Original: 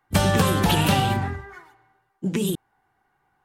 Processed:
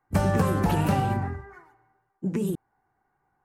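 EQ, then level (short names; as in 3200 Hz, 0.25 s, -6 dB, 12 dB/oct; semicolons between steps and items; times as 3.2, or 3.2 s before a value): high shelf 2100 Hz -9 dB; bell 3400 Hz -10.5 dB 0.62 oct; -2.5 dB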